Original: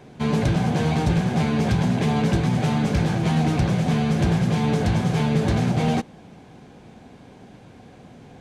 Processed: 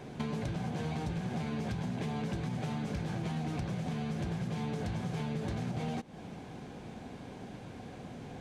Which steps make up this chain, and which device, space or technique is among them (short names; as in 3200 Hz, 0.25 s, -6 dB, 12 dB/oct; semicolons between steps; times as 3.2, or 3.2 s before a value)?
serial compression, peaks first (compressor, threshold -30 dBFS, peak gain reduction 13 dB; compressor 2:1, threshold -35 dBFS, peak gain reduction 4.5 dB)